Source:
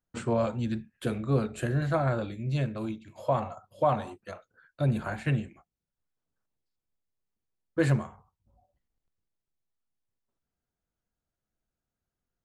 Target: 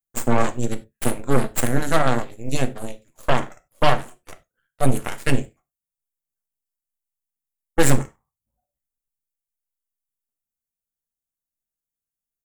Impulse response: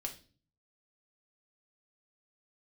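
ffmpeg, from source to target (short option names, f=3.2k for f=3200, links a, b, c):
-filter_complex "[0:a]aexciter=amount=6.6:drive=6.6:freq=6.2k,aeval=exprs='0.237*(cos(1*acos(clip(val(0)/0.237,-1,1)))-cos(1*PI/2))+0.00376*(cos(3*acos(clip(val(0)/0.237,-1,1)))-cos(3*PI/2))+0.0133*(cos(5*acos(clip(val(0)/0.237,-1,1)))-cos(5*PI/2))+0.0668*(cos(6*acos(clip(val(0)/0.237,-1,1)))-cos(6*PI/2))+0.0376*(cos(7*acos(clip(val(0)/0.237,-1,1)))-cos(7*PI/2))':c=same,asplit=2[a][b];[1:a]atrim=start_sample=2205,atrim=end_sample=4410,asetrate=42777,aresample=44100[c];[b][c]afir=irnorm=-1:irlink=0,volume=-1dB[d];[a][d]amix=inputs=2:normalize=0"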